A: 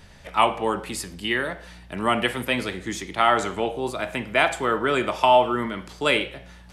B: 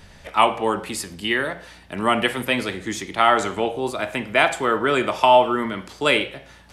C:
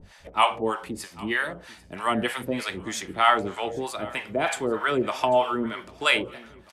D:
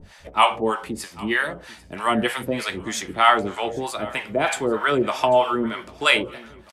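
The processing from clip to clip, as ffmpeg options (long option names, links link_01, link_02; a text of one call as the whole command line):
ffmpeg -i in.wav -af "bandreject=frequency=60:width_type=h:width=6,bandreject=frequency=120:width_type=h:width=6,bandreject=frequency=180:width_type=h:width=6,volume=2.5dB" out.wav
ffmpeg -i in.wav -filter_complex "[0:a]acrossover=split=640[link_01][link_02];[link_01]aeval=exprs='val(0)*(1-1/2+1/2*cos(2*PI*3.2*n/s))':channel_layout=same[link_03];[link_02]aeval=exprs='val(0)*(1-1/2-1/2*cos(2*PI*3.2*n/s))':channel_layout=same[link_04];[link_03][link_04]amix=inputs=2:normalize=0,aecho=1:1:793|1586|2379:0.0841|0.037|0.0163" out.wav
ffmpeg -i in.wav -filter_complex "[0:a]asplit=2[link_01][link_02];[link_02]adelay=14,volume=-12.5dB[link_03];[link_01][link_03]amix=inputs=2:normalize=0,volume=3.5dB" out.wav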